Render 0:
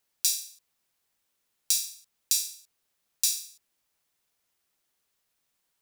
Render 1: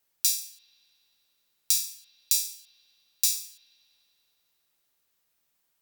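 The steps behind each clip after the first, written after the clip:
parametric band 16,000 Hz +11 dB 0.2 octaves
convolution reverb RT60 2.9 s, pre-delay 50 ms, DRR 13.5 dB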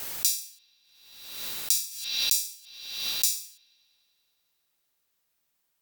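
background raised ahead of every attack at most 51 dB per second
level −1 dB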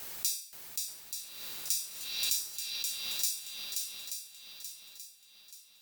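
feedback echo with a long and a short gap by turns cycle 881 ms, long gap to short 1.5 to 1, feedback 39%, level −4.5 dB
reverb whose tail is shaped and stops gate 100 ms flat, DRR 10 dB
level −7.5 dB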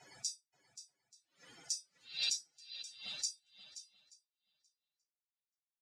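spectral dynamics exaggerated over time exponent 3
loudspeaker in its box 110–6,900 Hz, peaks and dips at 130 Hz +5 dB, 420 Hz −5 dB, 1,100 Hz −9 dB
level +2.5 dB

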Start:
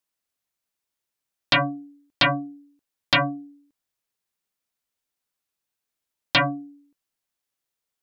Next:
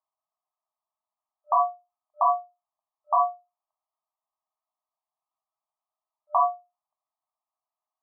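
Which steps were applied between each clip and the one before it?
brick-wall band-pass 600–1,300 Hz
level +5.5 dB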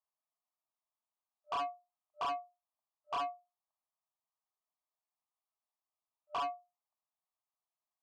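soft clipping −24 dBFS, distortion −8 dB
level −8 dB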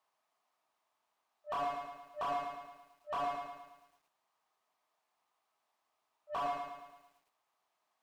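mid-hump overdrive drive 27 dB, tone 1,300 Hz, clips at −31.5 dBFS
feedback echo at a low word length 110 ms, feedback 55%, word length 12 bits, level −4 dB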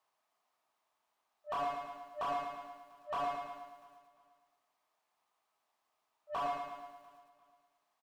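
repeating echo 347 ms, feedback 38%, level −18 dB

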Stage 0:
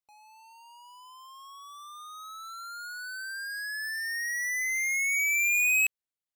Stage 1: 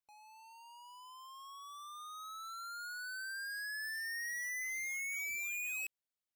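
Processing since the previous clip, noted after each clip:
soft clipping −36 dBFS, distortion −7 dB
level −3.5 dB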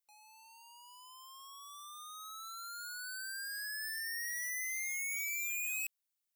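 spectral tilt +3 dB per octave
level −3.5 dB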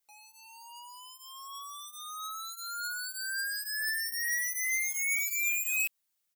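comb filter 6.3 ms, depth 77%
level +5 dB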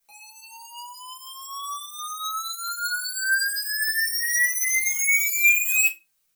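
convolution reverb RT60 0.25 s, pre-delay 4 ms, DRR −4 dB
level +4 dB

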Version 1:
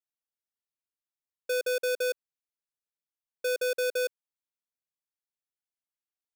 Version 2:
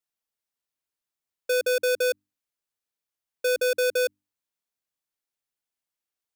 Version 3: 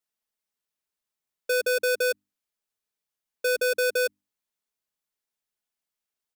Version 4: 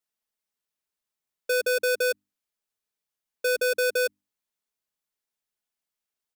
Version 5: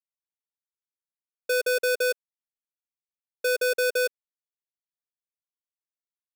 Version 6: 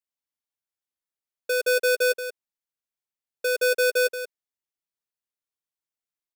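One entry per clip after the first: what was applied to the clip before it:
mains-hum notches 50/100/150/200/250/300 Hz; level +5 dB
comb filter 4.7 ms, depth 37%
no processing that can be heard
bit reduction 9 bits
single-tap delay 180 ms −8 dB

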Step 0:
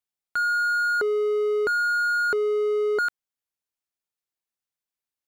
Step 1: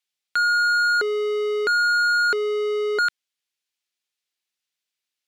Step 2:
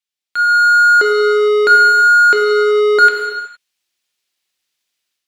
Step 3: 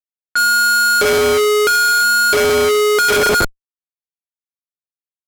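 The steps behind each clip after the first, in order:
meter weighting curve D
automatic gain control gain up to 13 dB; reverb whose tail is shaped and stops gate 490 ms falling, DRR 2 dB; level −4.5 dB
comparator with hysteresis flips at −22.5 dBFS; low-pass that shuts in the quiet parts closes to 1,800 Hz, open at −13 dBFS

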